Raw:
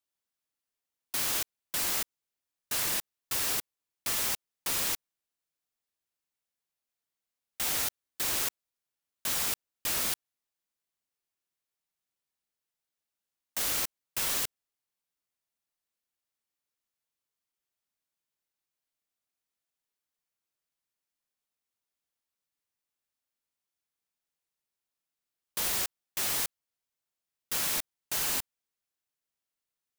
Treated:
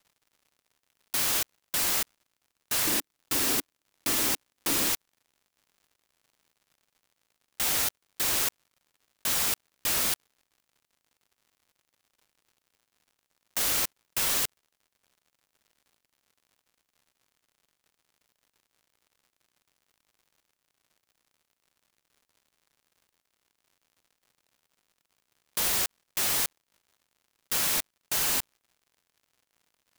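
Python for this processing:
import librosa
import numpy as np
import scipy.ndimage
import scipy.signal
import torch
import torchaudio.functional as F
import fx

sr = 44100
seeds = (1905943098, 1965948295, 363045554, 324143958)

y = fx.peak_eq(x, sr, hz=290.0, db=13.0, octaves=0.82, at=(2.87, 4.89))
y = fx.dmg_crackle(y, sr, seeds[0], per_s=130.0, level_db=-56.0)
y = y * 10.0 ** (3.5 / 20.0)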